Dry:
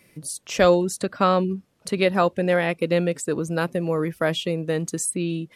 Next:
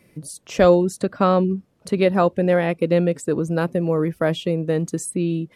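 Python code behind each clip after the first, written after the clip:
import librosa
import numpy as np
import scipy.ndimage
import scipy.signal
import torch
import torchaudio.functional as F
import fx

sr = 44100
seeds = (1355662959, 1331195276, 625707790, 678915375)

y = fx.tilt_shelf(x, sr, db=4.5, hz=1100.0)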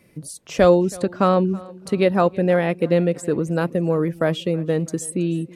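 y = fx.echo_feedback(x, sr, ms=325, feedback_pct=49, wet_db=-22.0)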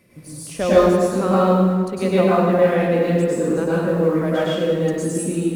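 y = fx.law_mismatch(x, sr, coded='mu')
y = fx.rev_plate(y, sr, seeds[0], rt60_s=1.6, hf_ratio=0.7, predelay_ms=90, drr_db=-9.5)
y = F.gain(torch.from_numpy(y), -8.5).numpy()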